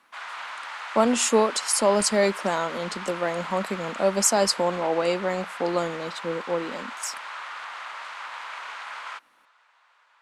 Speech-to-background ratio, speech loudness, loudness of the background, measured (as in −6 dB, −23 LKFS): 11.0 dB, −24.5 LKFS, −35.5 LKFS